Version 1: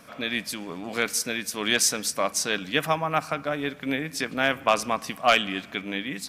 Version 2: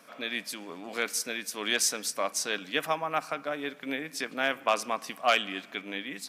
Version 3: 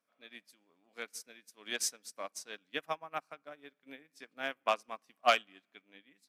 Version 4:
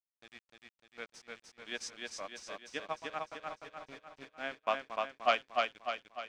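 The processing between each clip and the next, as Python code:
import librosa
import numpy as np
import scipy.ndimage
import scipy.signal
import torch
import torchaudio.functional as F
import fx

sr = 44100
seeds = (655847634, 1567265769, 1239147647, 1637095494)

y1 = scipy.signal.sosfilt(scipy.signal.butter(2, 260.0, 'highpass', fs=sr, output='sos'), x)
y1 = y1 * librosa.db_to_amplitude(-4.5)
y2 = fx.upward_expand(y1, sr, threshold_db=-40.0, expansion=2.5)
y3 = fx.quant_dither(y2, sr, seeds[0], bits=8, dither='none')
y3 = fx.air_absorb(y3, sr, metres=130.0)
y3 = fx.echo_feedback(y3, sr, ms=300, feedback_pct=51, wet_db=-3.0)
y3 = y3 * librosa.db_to_amplitude(-1.5)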